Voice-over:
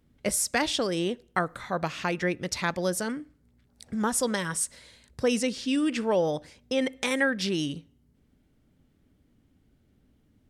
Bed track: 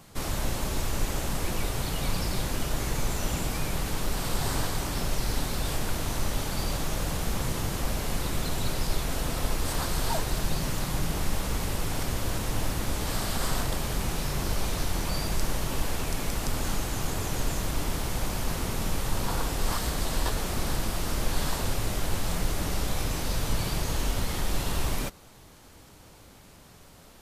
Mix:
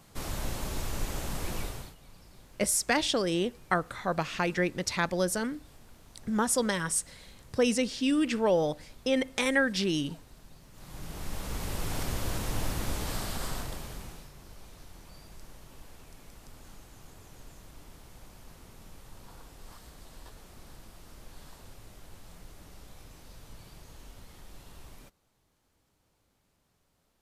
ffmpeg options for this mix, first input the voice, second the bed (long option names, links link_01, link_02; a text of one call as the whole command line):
ffmpeg -i stem1.wav -i stem2.wav -filter_complex "[0:a]adelay=2350,volume=-0.5dB[link_01];[1:a]volume=17.5dB,afade=type=out:start_time=1.58:duration=0.37:silence=0.0944061,afade=type=in:start_time=10.72:duration=1.23:silence=0.0749894,afade=type=out:start_time=12.9:duration=1.41:silence=0.11885[link_02];[link_01][link_02]amix=inputs=2:normalize=0" out.wav